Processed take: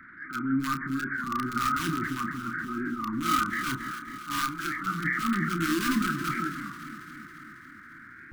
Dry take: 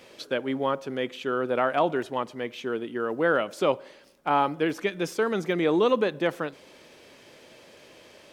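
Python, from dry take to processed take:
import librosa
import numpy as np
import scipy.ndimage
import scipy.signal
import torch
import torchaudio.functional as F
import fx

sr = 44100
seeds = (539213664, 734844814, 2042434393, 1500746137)

p1 = fx.freq_compress(x, sr, knee_hz=1200.0, ratio=4.0)
p2 = (np.mod(10.0 ** (18.0 / 20.0) * p1 + 1.0, 2.0) - 1.0) / 10.0 ** (18.0 / 20.0)
p3 = p1 + F.gain(torch.from_numpy(p2), -7.0).numpy()
p4 = fx.peak_eq(p3, sr, hz=230.0, db=-12.5, octaves=2.8, at=(4.39, 4.8))
p5 = fx.transient(p4, sr, attack_db=-12, sustain_db=6)
p6 = scipy.signal.sosfilt(scipy.signal.ellip(3, 1.0, 40, [300.0, 1200.0], 'bandstop', fs=sr, output='sos'), p5)
p7 = fx.doubler(p6, sr, ms=30.0, db=-8.5)
p8 = p7 + fx.echo_alternate(p7, sr, ms=137, hz=1000.0, feedback_pct=80, wet_db=-9.5, dry=0)
y = fx.record_warp(p8, sr, rpm=33.33, depth_cents=100.0)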